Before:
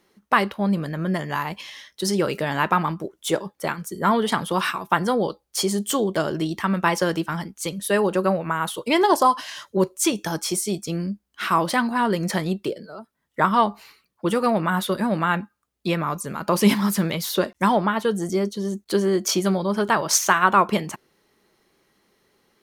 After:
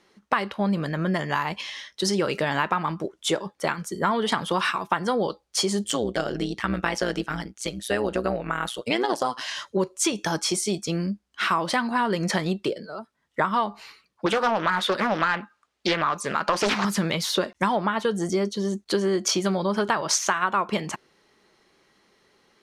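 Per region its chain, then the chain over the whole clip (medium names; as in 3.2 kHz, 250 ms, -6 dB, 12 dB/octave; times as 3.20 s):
5.84–9.41 s: peaking EQ 1 kHz -9.5 dB 0.31 oct + AM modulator 120 Hz, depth 65%
14.26–16.85 s: overdrive pedal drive 13 dB, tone 4.1 kHz, clips at -6 dBFS + loudspeaker Doppler distortion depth 0.94 ms
whole clip: low-pass 7.3 kHz 12 dB/octave; bass shelf 470 Hz -4.5 dB; compression 5:1, threshold -24 dBFS; trim +4 dB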